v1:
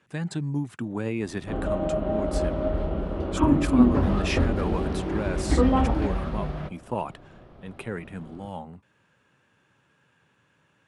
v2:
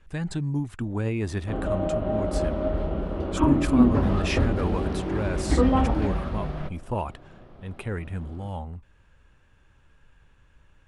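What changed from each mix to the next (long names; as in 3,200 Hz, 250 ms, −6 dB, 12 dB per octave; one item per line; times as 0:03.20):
speech: remove high-pass filter 130 Hz 24 dB per octave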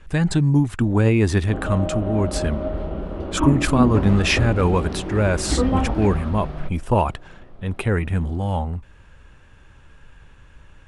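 speech +10.5 dB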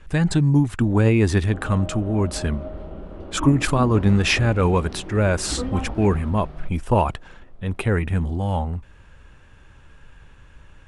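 background −8.0 dB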